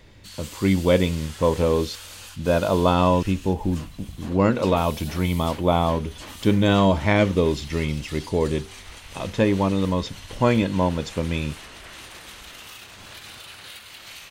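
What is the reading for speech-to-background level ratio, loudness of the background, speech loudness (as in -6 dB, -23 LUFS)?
17.5 dB, -40.0 LUFS, -22.5 LUFS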